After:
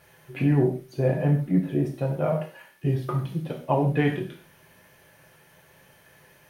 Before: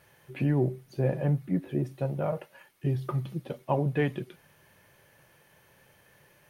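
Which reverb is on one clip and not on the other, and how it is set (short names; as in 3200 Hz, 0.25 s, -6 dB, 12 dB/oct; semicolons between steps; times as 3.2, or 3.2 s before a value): non-linear reverb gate 0.17 s falling, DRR 1 dB; gain +2.5 dB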